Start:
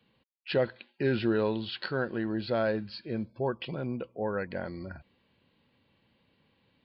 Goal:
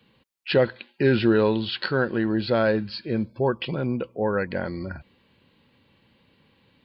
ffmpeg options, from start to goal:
-af "equalizer=f=680:t=o:w=0.32:g=-4,volume=8dB"

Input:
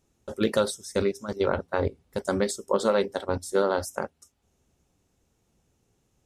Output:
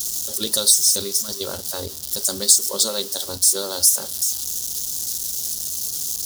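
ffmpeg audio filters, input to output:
-af "aeval=exprs='val(0)+0.5*0.0178*sgn(val(0))':c=same,aexciter=amount=15.8:drive=7.5:freq=3.6k,equalizer=f=7.8k:w=3.2:g=-3.5,volume=-7dB"

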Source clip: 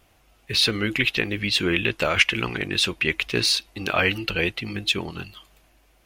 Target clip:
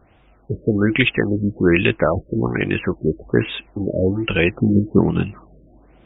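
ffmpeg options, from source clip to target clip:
-af "asetnsamples=n=441:p=0,asendcmd='4.52 equalizer g 14',equalizer=f=200:w=0.37:g=6,afftfilt=real='re*lt(b*sr/1024,610*pow(3800/610,0.5+0.5*sin(2*PI*1.2*pts/sr)))':imag='im*lt(b*sr/1024,610*pow(3800/610,0.5+0.5*sin(2*PI*1.2*pts/sr)))':win_size=1024:overlap=0.75,volume=4dB"

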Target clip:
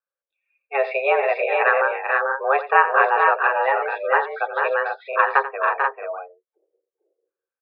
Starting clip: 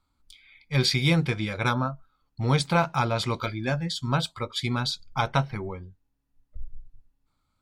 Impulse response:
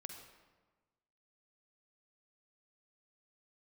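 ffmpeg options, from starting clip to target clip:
-af "afftdn=nr=25:nf=-37,aecho=1:1:87|442|482:0.2|0.531|0.562,highpass=f=220:t=q:w=0.5412,highpass=f=220:t=q:w=1.307,lowpass=f=2.1k:t=q:w=0.5176,lowpass=f=2.1k:t=q:w=0.7071,lowpass=f=2.1k:t=q:w=1.932,afreqshift=270,volume=8.5dB"

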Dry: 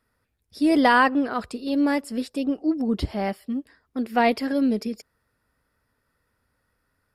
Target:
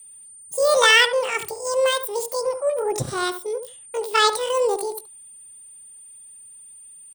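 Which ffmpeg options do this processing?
-filter_complex "[0:a]aeval=exprs='val(0)+0.00178*sin(2*PI*4900*n/s)':c=same,acrossover=split=4100[a][b];[b]alimiter=level_in=13.5dB:limit=-24dB:level=0:latency=1:release=139,volume=-13.5dB[c];[a][c]amix=inputs=2:normalize=0,asetrate=80880,aresample=44100,atempo=0.545254,aemphasis=mode=production:type=75kf,asplit=2[d][e];[e]adelay=72,lowpass=f=1.2k:p=1,volume=-8dB,asplit=2[f][g];[g]adelay=72,lowpass=f=1.2k:p=1,volume=0.15[h];[d][f][h]amix=inputs=3:normalize=0"

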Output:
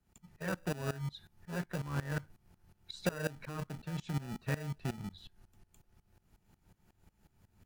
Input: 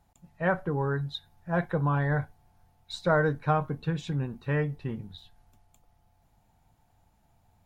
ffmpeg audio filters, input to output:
-filter_complex "[0:a]acrossover=split=130|890|3200[a][b][c][d];[b]acrusher=samples=41:mix=1:aa=0.000001[e];[a][e][c][d]amix=inputs=4:normalize=0,equalizer=f=190:w=4.7:g=4.5,bandreject=f=3.7k:w=17,acompressor=threshold=-33dB:ratio=6,aeval=exprs='val(0)*pow(10,-19*if(lt(mod(-5.5*n/s,1),2*abs(-5.5)/1000),1-mod(-5.5*n/s,1)/(2*abs(-5.5)/1000),(mod(-5.5*n/s,1)-2*abs(-5.5)/1000)/(1-2*abs(-5.5)/1000))/20)':c=same,volume=5dB"

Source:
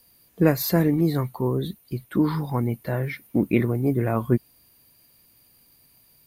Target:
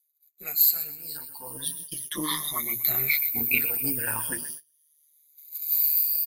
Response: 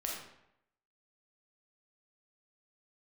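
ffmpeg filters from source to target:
-filter_complex "[0:a]afftfilt=real='re*pow(10,20/40*sin(2*PI*(1.2*log(max(b,1)*sr/1024/100)/log(2)-(0.38)*(pts-256)/sr)))':imag='im*pow(10,20/40*sin(2*PI*(1.2*log(max(b,1)*sr/1024/100)/log(2)-(0.38)*(pts-256)/sr)))':win_size=1024:overlap=0.75,bandreject=f=60:t=h:w=6,bandreject=f=120:t=h:w=6,bandreject=f=180:t=h:w=6,bandreject=f=240:t=h:w=6,bandreject=f=300:t=h:w=6,bandreject=f=360:t=h:w=6,bandreject=f=420:t=h:w=6,aecho=1:1:125|250|375:0.178|0.0622|0.0218,flanger=delay=5.6:depth=9.5:regen=12:speed=0.53:shape=triangular,tremolo=f=150:d=0.571,tiltshelf=f=1.3k:g=-8.5,agate=range=-33dB:threshold=-49dB:ratio=16:detection=peak,crystalizer=i=8.5:c=0,asplit=2[a][b];[b]asoftclip=type=tanh:threshold=-2dB,volume=-9.5dB[c];[a][c]amix=inputs=2:normalize=0,dynaudnorm=f=140:g=11:m=15dB,adynamicequalizer=threshold=0.00447:dfrequency=530:dqfactor=1.8:tfrequency=530:tqfactor=1.8:attack=5:release=100:ratio=0.375:range=2.5:mode=cutabove:tftype=bell,volume=-6.5dB"

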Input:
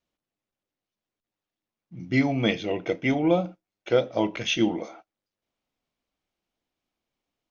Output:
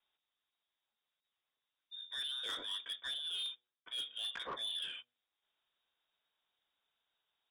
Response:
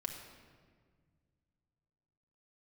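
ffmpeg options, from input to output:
-af "lowpass=f=3.2k:t=q:w=0.5098,lowpass=f=3.2k:t=q:w=0.6013,lowpass=f=3.2k:t=q:w=0.9,lowpass=f=3.2k:t=q:w=2.563,afreqshift=-3800,highshelf=f=2.2k:g=-5.5,areverse,acompressor=threshold=-38dB:ratio=20,areverse,asoftclip=type=tanh:threshold=-38.5dB,bandreject=f=121.7:t=h:w=4,bandreject=f=243.4:t=h:w=4,bandreject=f=365.1:t=h:w=4,bandreject=f=486.8:t=h:w=4,bandreject=f=608.5:t=h:w=4,bandreject=f=730.2:t=h:w=4,bandreject=f=851.9:t=h:w=4,volume=3.5dB"

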